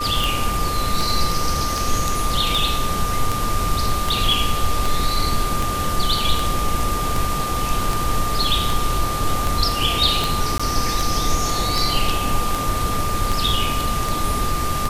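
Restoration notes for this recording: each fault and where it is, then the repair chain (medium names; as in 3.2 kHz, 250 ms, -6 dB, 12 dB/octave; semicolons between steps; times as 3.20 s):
tick 78 rpm
whine 1.2 kHz -24 dBFS
10.58–10.60 s: dropout 15 ms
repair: de-click; band-stop 1.2 kHz, Q 30; interpolate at 10.58 s, 15 ms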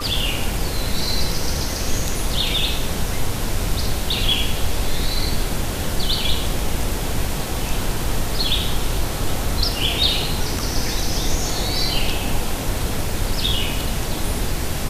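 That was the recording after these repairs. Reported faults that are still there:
nothing left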